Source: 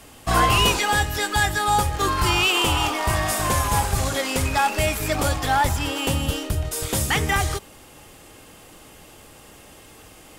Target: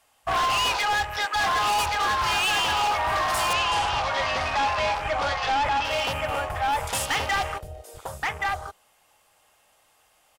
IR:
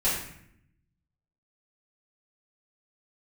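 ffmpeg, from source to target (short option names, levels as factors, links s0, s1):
-filter_complex "[0:a]lowshelf=f=490:t=q:w=1.5:g=-12,aecho=1:1:1126:0.668,afwtdn=0.0282,asoftclip=type=hard:threshold=0.0891,asettb=1/sr,asplit=3[s0][s1][s2];[s0]atrim=end=3.534[s3];[s1]atrim=start=3.53:end=5.85,asetpts=PTS-STARTPTS,afade=t=in:d=0.004:c=qsin,afade=t=out:st=2.316:d=0.004:c=qsin,lowpass=6100[s4];[s2]atrim=start=5.846[s5];[s3][s4]acrossfade=d=0.004:c1=hsin:c2=qsin[s6];[s6][s5]acrossfade=d=0.004:c1=qsin:c2=hsin"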